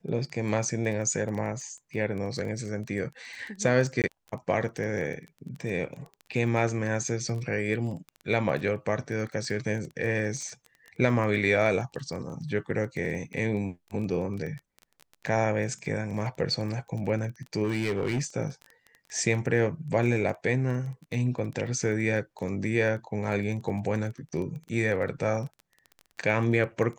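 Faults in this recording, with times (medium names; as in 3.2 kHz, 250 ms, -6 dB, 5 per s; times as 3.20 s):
crackle 15 per s -34 dBFS
4.02–4.04 s: dropout 18 ms
17.63–18.22 s: clipped -23 dBFS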